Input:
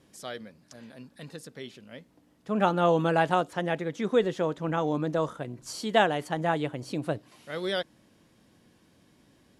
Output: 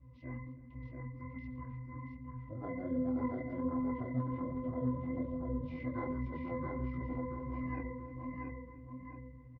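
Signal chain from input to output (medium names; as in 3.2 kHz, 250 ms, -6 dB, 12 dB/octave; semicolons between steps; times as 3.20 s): pitch-class resonator B, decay 0.53 s; feedback delay 678 ms, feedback 29%, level -4 dB; chorus 1.3 Hz, delay 16 ms, depth 5.2 ms; pitch shift -11.5 st; on a send: delay 312 ms -20 dB; on the sum: spectrum-flattening compressor 2:1; trim +3.5 dB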